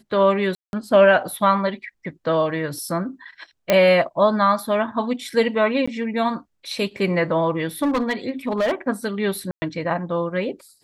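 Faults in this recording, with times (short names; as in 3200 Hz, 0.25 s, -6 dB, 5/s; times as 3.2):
0.55–0.73 gap 0.181 s
3.7 pop -3 dBFS
5.86–5.88 gap 15 ms
7.82–8.72 clipped -17 dBFS
9.51–9.62 gap 0.11 s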